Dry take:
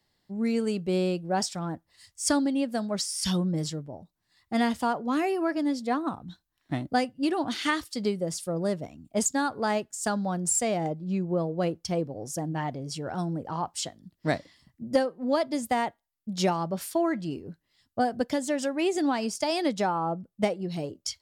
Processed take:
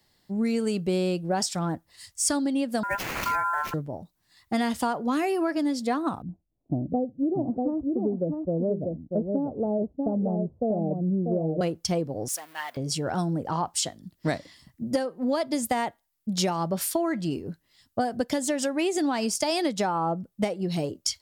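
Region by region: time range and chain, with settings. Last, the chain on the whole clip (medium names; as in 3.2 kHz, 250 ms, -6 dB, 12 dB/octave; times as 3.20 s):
2.83–3.74 s: sample-rate reducer 8.9 kHz, jitter 20% + resonant high shelf 1.8 kHz -9 dB, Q 1.5 + ring modulator 1.2 kHz
6.22–11.61 s: steep low-pass 650 Hz + delay 641 ms -5.5 dB
12.28–12.77 s: companding laws mixed up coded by mu + high-pass 1.5 kHz + peaking EQ 6.8 kHz -6 dB 1 oct
whole clip: treble shelf 7.1 kHz +6 dB; compression, threshold -28 dBFS; trim +5.5 dB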